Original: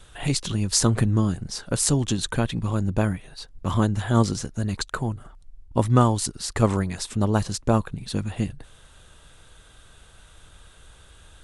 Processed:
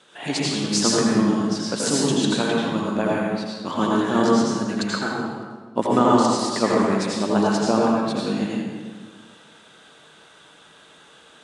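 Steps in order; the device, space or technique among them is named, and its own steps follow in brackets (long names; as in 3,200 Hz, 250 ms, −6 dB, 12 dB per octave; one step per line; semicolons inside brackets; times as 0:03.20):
supermarket ceiling speaker (band-pass filter 240–6,300 Hz; convolution reverb RT60 1.5 s, pre-delay 76 ms, DRR −5 dB)
0:05.99–0:06.39: low-pass filter 8,500 Hz 24 dB per octave
low shelf with overshoot 130 Hz −9 dB, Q 1.5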